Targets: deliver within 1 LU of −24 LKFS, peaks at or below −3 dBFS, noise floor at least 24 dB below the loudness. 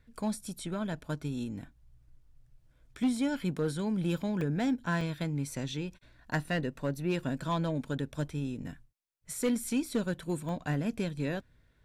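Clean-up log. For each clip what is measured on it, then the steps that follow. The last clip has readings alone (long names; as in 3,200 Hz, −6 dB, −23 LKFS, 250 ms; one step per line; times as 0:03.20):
share of clipped samples 0.5%; peaks flattened at −22.5 dBFS; number of dropouts 5; longest dropout 1.8 ms; integrated loudness −33.5 LKFS; sample peak −22.5 dBFS; target loudness −24.0 LKFS
→ clipped peaks rebuilt −22.5 dBFS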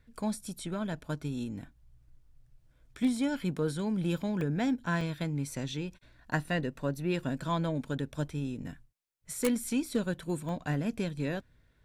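share of clipped samples 0.0%; number of dropouts 5; longest dropout 1.8 ms
→ repair the gap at 0:00.93/0:03.57/0:04.41/0:05.01/0:10.49, 1.8 ms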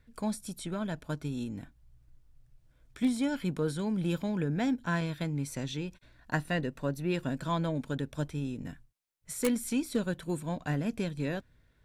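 number of dropouts 0; integrated loudness −33.5 LKFS; sample peak −13.5 dBFS; target loudness −24.0 LKFS
→ level +9.5 dB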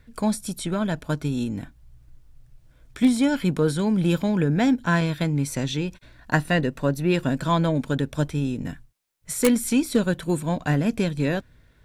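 integrated loudness −24.0 LKFS; sample peak −4.0 dBFS; background noise floor −57 dBFS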